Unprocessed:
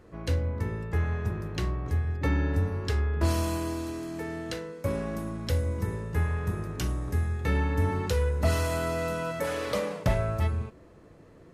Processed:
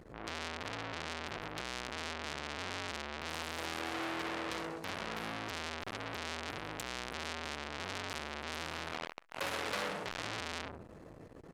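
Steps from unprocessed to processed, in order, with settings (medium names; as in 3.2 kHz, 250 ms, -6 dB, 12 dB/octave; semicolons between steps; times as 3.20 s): 8.56–9.31 s: treble shelf 4 kHz -11 dB; hard clipper -26 dBFS, distortion -10 dB; feedback delay 64 ms, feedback 49%, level -9 dB; transformer saturation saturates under 3.9 kHz; trim +3 dB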